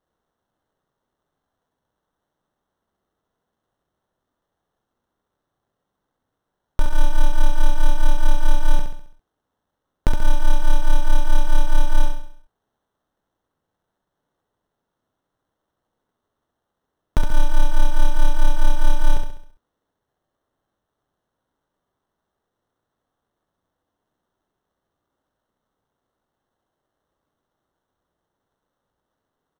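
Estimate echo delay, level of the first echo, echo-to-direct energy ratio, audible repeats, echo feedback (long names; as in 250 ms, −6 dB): 67 ms, −5.5 dB, −4.5 dB, 5, 47%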